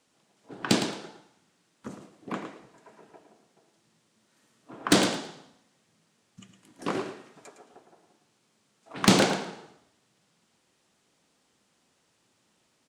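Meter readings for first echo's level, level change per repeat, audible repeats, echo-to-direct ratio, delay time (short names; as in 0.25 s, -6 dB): -9.0 dB, -15.0 dB, 2, -9.0 dB, 0.11 s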